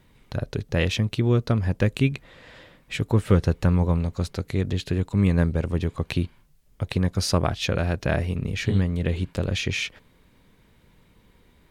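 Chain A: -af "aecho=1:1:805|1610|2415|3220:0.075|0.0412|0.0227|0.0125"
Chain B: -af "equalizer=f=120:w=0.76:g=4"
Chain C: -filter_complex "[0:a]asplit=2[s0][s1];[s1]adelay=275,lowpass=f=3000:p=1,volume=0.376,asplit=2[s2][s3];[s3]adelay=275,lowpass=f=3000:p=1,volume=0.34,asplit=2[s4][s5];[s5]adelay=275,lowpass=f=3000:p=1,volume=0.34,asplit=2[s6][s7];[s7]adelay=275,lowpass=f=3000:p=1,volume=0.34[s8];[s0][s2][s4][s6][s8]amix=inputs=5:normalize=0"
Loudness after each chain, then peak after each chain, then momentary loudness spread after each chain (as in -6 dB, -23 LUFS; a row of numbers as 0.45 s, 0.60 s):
-25.0 LUFS, -22.0 LUFS, -24.5 LUFS; -7.5 dBFS, -5.0 dBFS, -7.5 dBFS; 11 LU, 10 LU, 13 LU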